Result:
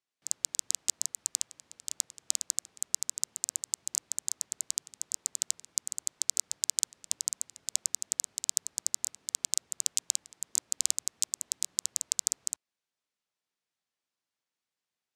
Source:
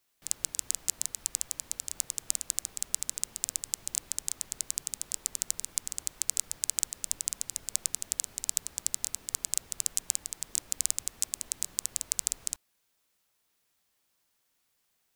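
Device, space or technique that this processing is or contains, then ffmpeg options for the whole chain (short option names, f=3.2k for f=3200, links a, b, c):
over-cleaned archive recording: -af "highpass=110,lowpass=7k,afwtdn=0.00708,volume=5dB"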